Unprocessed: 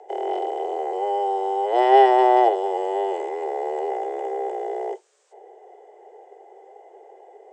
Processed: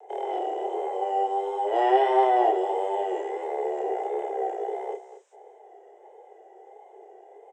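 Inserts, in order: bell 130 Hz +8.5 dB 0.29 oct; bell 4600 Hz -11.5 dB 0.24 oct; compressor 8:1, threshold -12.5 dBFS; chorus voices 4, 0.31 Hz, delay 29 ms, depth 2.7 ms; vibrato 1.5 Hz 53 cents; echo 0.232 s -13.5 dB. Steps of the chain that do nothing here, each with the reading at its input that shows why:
bell 130 Hz: input band starts at 320 Hz

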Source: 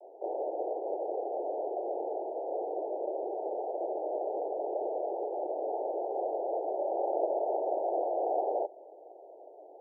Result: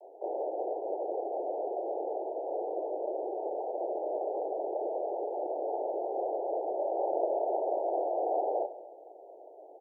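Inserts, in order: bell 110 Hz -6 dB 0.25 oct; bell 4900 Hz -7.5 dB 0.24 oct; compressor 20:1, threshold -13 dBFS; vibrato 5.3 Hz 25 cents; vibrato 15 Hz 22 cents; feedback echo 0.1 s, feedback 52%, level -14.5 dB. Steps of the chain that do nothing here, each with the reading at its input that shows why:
bell 110 Hz: input band starts at 270 Hz; bell 4900 Hz: input band ends at 1000 Hz; compressor, threshold -13 dBFS: input peak -18.0 dBFS

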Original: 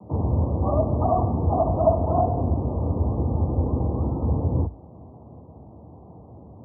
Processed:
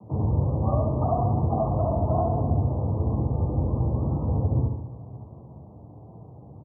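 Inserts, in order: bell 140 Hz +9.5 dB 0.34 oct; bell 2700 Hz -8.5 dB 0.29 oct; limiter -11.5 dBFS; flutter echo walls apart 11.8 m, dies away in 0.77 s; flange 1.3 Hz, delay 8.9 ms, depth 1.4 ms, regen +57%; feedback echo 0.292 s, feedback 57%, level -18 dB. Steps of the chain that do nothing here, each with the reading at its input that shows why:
bell 2700 Hz: input band ends at 1000 Hz

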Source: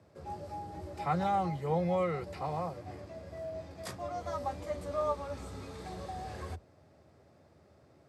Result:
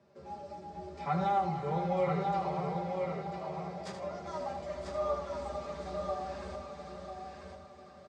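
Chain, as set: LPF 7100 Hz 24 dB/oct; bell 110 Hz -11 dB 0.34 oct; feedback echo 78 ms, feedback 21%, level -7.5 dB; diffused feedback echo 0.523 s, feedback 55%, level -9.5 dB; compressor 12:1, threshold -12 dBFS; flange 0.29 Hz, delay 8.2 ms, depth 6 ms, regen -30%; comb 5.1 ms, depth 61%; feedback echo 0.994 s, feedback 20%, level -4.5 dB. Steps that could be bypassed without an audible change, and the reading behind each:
compressor, threshold -12 dBFS: input peak -18.5 dBFS

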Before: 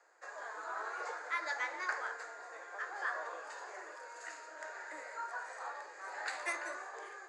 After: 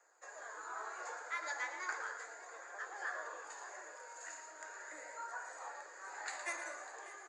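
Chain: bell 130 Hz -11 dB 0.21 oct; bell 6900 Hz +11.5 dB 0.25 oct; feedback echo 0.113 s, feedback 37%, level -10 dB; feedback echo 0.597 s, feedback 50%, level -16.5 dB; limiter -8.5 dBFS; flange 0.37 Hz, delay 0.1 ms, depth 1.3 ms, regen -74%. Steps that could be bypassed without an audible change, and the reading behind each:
bell 130 Hz: input band starts at 270 Hz; limiter -8.5 dBFS: input peak -21.0 dBFS

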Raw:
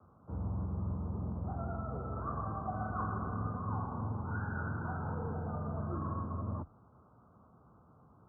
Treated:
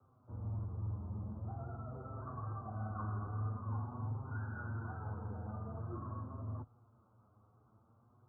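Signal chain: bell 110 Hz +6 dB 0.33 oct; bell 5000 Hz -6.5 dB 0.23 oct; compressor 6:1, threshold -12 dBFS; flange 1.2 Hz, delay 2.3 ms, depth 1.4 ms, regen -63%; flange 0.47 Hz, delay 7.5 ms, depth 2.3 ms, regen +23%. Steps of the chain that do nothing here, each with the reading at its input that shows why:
bell 5000 Hz: input band ends at 1500 Hz; compressor, threshold -12 dBFS: input peak -23.0 dBFS

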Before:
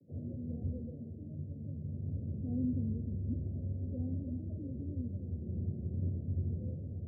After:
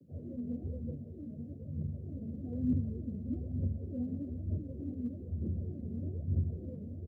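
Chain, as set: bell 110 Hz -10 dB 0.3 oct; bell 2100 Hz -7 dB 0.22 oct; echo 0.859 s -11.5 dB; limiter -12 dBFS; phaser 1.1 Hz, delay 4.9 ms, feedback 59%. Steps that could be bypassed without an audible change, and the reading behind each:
bell 2100 Hz: input band ends at 570 Hz; limiter -12 dBFS: input peak -24.5 dBFS

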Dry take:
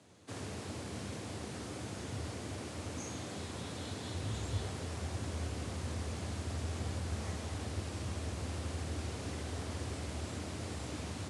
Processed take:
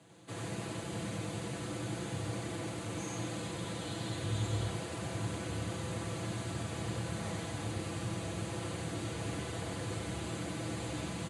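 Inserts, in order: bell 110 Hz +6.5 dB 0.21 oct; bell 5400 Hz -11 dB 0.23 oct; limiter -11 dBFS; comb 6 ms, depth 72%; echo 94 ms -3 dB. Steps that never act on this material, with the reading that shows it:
limiter -11 dBFS: input peak -23.0 dBFS

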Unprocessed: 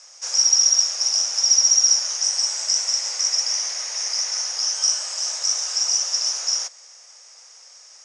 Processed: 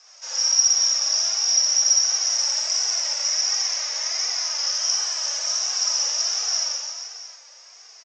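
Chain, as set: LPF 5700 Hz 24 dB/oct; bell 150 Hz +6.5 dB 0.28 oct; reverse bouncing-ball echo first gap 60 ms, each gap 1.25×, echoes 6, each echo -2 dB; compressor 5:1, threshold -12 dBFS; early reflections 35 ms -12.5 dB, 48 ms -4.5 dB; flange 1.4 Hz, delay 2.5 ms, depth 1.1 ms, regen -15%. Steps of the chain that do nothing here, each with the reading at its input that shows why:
bell 150 Hz: input band starts at 430 Hz

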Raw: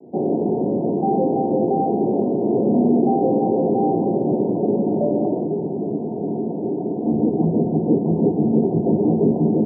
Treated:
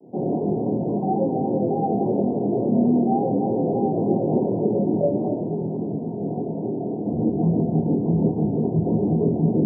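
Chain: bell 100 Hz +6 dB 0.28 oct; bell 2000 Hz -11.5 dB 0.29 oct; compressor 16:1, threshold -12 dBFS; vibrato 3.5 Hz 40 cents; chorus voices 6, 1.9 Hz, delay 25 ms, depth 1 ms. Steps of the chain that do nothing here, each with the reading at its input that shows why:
bell 2000 Hz: input band ends at 960 Hz

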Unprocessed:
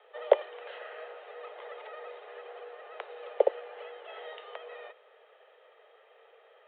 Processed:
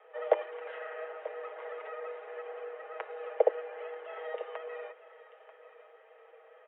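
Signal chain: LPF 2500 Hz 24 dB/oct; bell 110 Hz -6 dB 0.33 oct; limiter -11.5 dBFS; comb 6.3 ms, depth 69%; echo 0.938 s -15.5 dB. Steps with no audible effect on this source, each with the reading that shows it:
bell 110 Hz: input band starts at 320 Hz

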